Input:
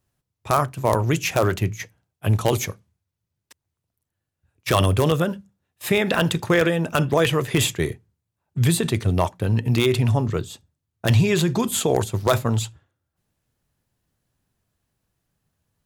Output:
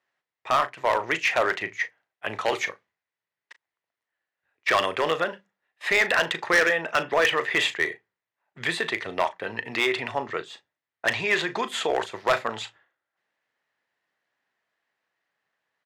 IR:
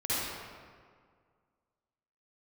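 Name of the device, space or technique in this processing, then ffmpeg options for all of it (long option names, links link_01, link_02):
megaphone: -filter_complex "[0:a]highpass=610,lowpass=3400,equalizer=frequency=1900:width_type=o:width=0.39:gain=9.5,asoftclip=type=hard:threshold=-16dB,asplit=2[link_01][link_02];[link_02]adelay=37,volume=-13dB[link_03];[link_01][link_03]amix=inputs=2:normalize=0,volume=1.5dB"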